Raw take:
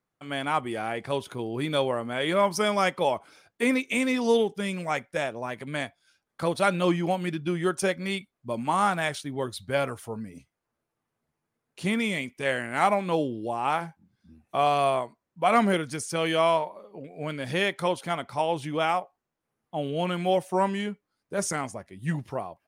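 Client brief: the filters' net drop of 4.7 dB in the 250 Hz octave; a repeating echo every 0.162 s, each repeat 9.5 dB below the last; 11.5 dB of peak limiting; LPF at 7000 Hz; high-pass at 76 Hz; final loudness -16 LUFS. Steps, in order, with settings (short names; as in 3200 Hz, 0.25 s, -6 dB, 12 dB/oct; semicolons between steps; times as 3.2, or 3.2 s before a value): HPF 76 Hz; LPF 7000 Hz; bell 250 Hz -6.5 dB; limiter -20.5 dBFS; feedback echo 0.162 s, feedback 33%, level -9.5 dB; gain +16 dB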